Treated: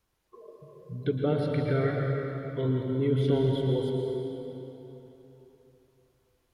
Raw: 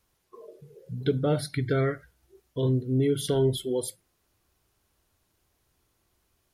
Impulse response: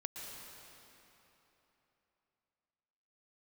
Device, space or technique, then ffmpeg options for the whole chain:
swimming-pool hall: -filter_complex "[0:a]acrossover=split=3800[a][b];[b]acompressor=threshold=-55dB:ratio=4:attack=1:release=60[c];[a][c]amix=inputs=2:normalize=0[d];[1:a]atrim=start_sample=2205[e];[d][e]afir=irnorm=-1:irlink=0,highshelf=f=5.5k:g=-6,volume=1dB"

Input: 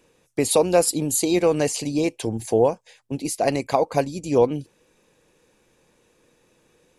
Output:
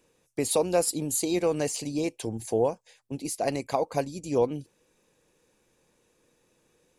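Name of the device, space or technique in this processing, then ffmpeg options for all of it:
exciter from parts: -filter_complex "[0:a]asplit=2[a][b];[b]highpass=3.9k,asoftclip=type=tanh:threshold=-28dB,volume=-7dB[c];[a][c]amix=inputs=2:normalize=0,volume=-6.5dB"

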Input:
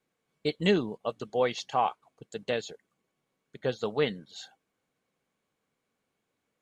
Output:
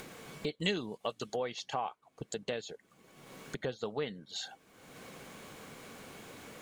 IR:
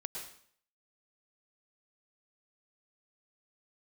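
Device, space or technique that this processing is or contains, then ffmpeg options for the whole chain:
upward and downward compression: -filter_complex "[0:a]acompressor=mode=upward:threshold=-34dB:ratio=2.5,acompressor=threshold=-43dB:ratio=3,asettb=1/sr,asplit=3[a][b][c];[a]atrim=end=0.604[d];[b]atrim=start=0.6:end=1.36,asetpts=PTS-STARTPTS,afade=t=in:d=0.004:c=qsin,afade=t=out:st=0.756:d=0.004:c=qsin,highshelf=f=2k:g=11.5[e];[c]atrim=start=1.356[f];[d][e]acrossfade=d=0.004:c1=hsin:c2=qsin[g];[g][f]acrossfade=d=0.004:c1=qsin:c2=hsin,volume=5.5dB"

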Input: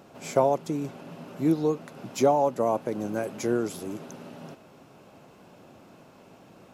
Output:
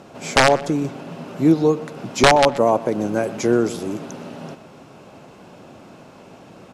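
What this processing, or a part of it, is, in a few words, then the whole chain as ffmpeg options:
overflowing digital effects unit: -filter_complex "[0:a]aeval=exprs='(mod(4.47*val(0)+1,2)-1)/4.47':c=same,lowpass=10k,acrossover=split=9300[a][b];[b]acompressor=threshold=-55dB:ratio=4:attack=1:release=60[c];[a][c]amix=inputs=2:normalize=0,asplit=2[d][e];[e]adelay=126,lowpass=f=4k:p=1,volume=-17dB,asplit=2[f][g];[g]adelay=126,lowpass=f=4k:p=1,volume=0.34,asplit=2[h][i];[i]adelay=126,lowpass=f=4k:p=1,volume=0.34[j];[d][f][h][j]amix=inputs=4:normalize=0,volume=8.5dB"

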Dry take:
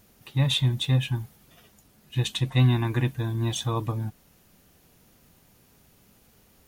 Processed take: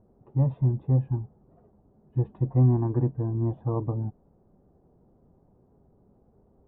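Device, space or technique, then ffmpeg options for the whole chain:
under water: -af "lowpass=f=860:w=0.5412,lowpass=f=860:w=1.3066,equalizer=f=390:t=o:w=0.27:g=5"

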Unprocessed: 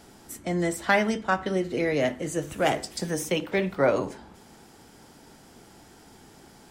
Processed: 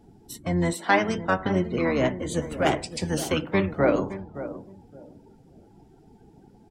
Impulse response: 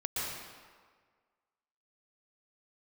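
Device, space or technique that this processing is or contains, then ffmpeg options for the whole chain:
octave pedal: -filter_complex "[0:a]asplit=2[a][b];[b]asetrate=22050,aresample=44100,atempo=2,volume=-4dB[c];[a][c]amix=inputs=2:normalize=0,asettb=1/sr,asplit=3[d][e][f];[d]atrim=end=0.734[g];[e]atrim=start=0.73:end=1.18,asetpts=PTS-STARTPTS,afade=t=in:d=0.004:c=qsin,afade=t=out:st=0.446:d=0.004:c=qsin,highpass=f=170:w=0.5412,highpass=f=170:w=1.3066[h];[f]atrim=start=1.176[i];[g][h]acrossfade=d=0.004:c1=hsin:c2=qsin[j];[j][i]acrossfade=d=0.004:c1=qsin:c2=hsin,asplit=2[k][l];[l]adelay=565,lowpass=f=1.4k:p=1,volume=-12.5dB,asplit=2[m][n];[n]adelay=565,lowpass=f=1.4k:p=1,volume=0.24,asplit=2[o][p];[p]adelay=565,lowpass=f=1.4k:p=1,volume=0.24[q];[k][m][o][q]amix=inputs=4:normalize=0,afftdn=nr=20:nf=-46"

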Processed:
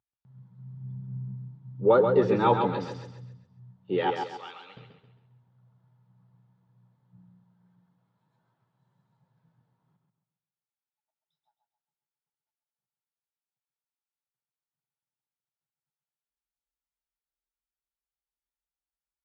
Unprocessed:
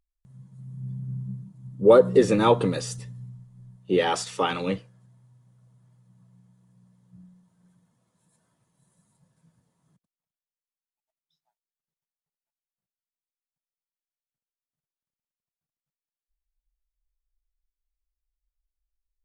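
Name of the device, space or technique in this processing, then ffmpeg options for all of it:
frequency-shifting delay pedal into a guitar cabinet: -filter_complex "[0:a]asplit=3[a][b][c];[b]adelay=99,afreqshift=-34,volume=-23dB[d];[c]adelay=198,afreqshift=-68,volume=-32.4dB[e];[a][d][e]amix=inputs=3:normalize=0,highpass=100,equalizer=f=120:t=q:w=4:g=9,equalizer=f=400:t=q:w=4:g=3,equalizer=f=860:t=q:w=4:g=10,equalizer=f=1.4k:t=q:w=4:g=6,lowpass=f=4.2k:w=0.5412,lowpass=f=4.2k:w=1.3066,asettb=1/sr,asplit=3[f][g][h];[f]atrim=end=4.104[i];[g]atrim=start=4.1:end=4.77,asetpts=PTS-STARTPTS,afade=t=in:d=0.004:c=qsin,afade=t=out:st=0.666:d=0.004:c=qsin,aderivative[j];[h]atrim=start=4.766[k];[i][j]acrossfade=d=0.004:c1=hsin:c2=qsin[l];[l][k]acrossfade=d=0.004:c1=qsin:c2=hsin,aecho=1:1:134|268|402|536|670:0.531|0.202|0.0767|0.0291|0.0111,volume=-7.5dB"

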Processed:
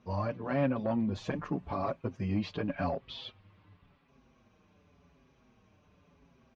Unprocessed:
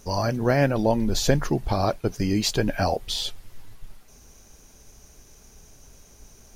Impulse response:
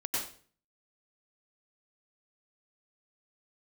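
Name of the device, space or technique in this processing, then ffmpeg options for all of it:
barber-pole flanger into a guitar amplifier: -filter_complex "[0:a]asplit=2[a][b];[b]adelay=5.9,afreqshift=-0.9[c];[a][c]amix=inputs=2:normalize=1,asoftclip=type=tanh:threshold=-17.5dB,highpass=76,equalizer=f=94:t=q:w=4:g=7,equalizer=f=170:t=q:w=4:g=8,equalizer=f=260:t=q:w=4:g=8,equalizer=f=560:t=q:w=4:g=4,equalizer=f=1.1k:t=q:w=4:g=9,equalizer=f=2.5k:t=q:w=4:g=4,lowpass=f=3.5k:w=0.5412,lowpass=f=3.5k:w=1.3066,asettb=1/sr,asplit=3[d][e][f];[d]atrim=end=1.154[g];[e]atrim=start=1.15:end=2.29,asetpts=PTS-STARTPTS,afade=t=in:d=0.004:c=qsin,afade=t=out:st=1.136:d=0.004:c=qsin,highshelf=f=6.1k:t=q:w=1.5:g=11.5[h];[f]atrim=start=2.286[i];[g][h]acrossfade=d=0.004:c1=hsin:c2=qsin[j];[j][i]acrossfade=d=0.004:c1=qsin:c2=hsin,volume=-8.5dB"

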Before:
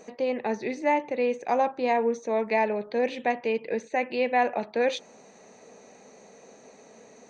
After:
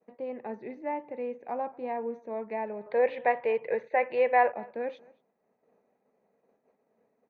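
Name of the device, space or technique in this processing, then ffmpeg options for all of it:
hearing-loss simulation: -filter_complex "[0:a]asettb=1/sr,asplit=3[a][b][c];[a]atrim=end=2.864[d];[b]atrim=start=2.86:end=4.52,asetpts=PTS-STARTPTS,afade=t=in:d=0.004:c=qsin,afade=t=out:st=1.656:d=0.004:c=qsin,equalizer=f=125:t=o:w=1:g=9,equalizer=f=250:t=o:w=1:g=-8,equalizer=f=500:t=o:w=1:g=10,equalizer=f=1k:t=o:w=1:g=8,equalizer=f=2k:t=o:w=1:g=11,equalizer=f=4k:t=o:w=1:g=9[e];[c]atrim=start=4.516[f];[d][e]acrossfade=d=0.004:c1=hsin:c2=qsin[g];[g][f]acrossfade=d=0.004:c1=qsin:c2=hsin,lowpass=1.6k,agate=range=-33dB:threshold=-43dB:ratio=3:detection=peak,asplit=2[h][i];[i]adelay=227.4,volume=-24dB,highshelf=f=4k:g=-5.12[j];[h][j]amix=inputs=2:normalize=0,volume=-9dB"

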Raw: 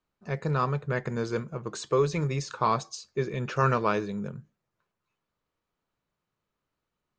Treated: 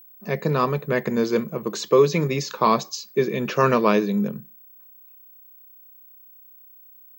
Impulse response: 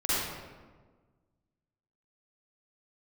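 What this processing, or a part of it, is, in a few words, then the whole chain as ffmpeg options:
old television with a line whistle: -af "highpass=f=170:w=0.5412,highpass=f=170:w=1.3066,equalizer=f=210:t=q:w=4:g=4,equalizer=f=820:t=q:w=4:g=-5,equalizer=f=1.4k:t=q:w=4:g=-9,lowpass=f=6.8k:w=0.5412,lowpass=f=6.8k:w=1.3066,aeval=exprs='val(0)+0.00178*sin(2*PI*15734*n/s)':c=same,volume=9dB"

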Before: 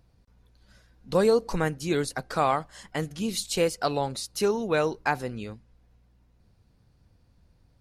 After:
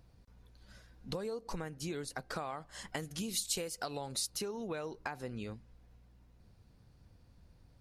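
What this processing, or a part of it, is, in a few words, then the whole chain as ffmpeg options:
serial compression, leveller first: -filter_complex "[0:a]acompressor=threshold=-26dB:ratio=2.5,acompressor=threshold=-37dB:ratio=6,asettb=1/sr,asplit=3[a][b][c];[a]atrim=end=2.934[d];[b]atrim=start=2.93:end=4.3,asetpts=PTS-STARTPTS,afade=t=in:d=0.004:c=qsin,afade=t=out:st=1.366:d=0.004:c=qsin,highshelf=f=5k:g=9[e];[c]atrim=start=4.296[f];[d][e]acrossfade=d=0.004:c1=hsin:c2=qsin[g];[g][f]acrossfade=d=0.004:c1=qsin:c2=hsin"

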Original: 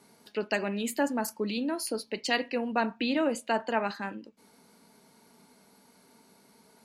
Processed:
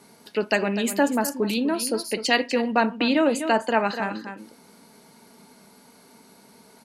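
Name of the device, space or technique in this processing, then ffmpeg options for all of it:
ducked delay: -filter_complex "[0:a]asplit=3[a][b][c];[b]adelay=248,volume=-8dB[d];[c]apad=whole_len=312919[e];[d][e]sidechaincompress=threshold=-34dB:ratio=8:attack=27:release=161[f];[a][f]amix=inputs=2:normalize=0,volume=7dB"

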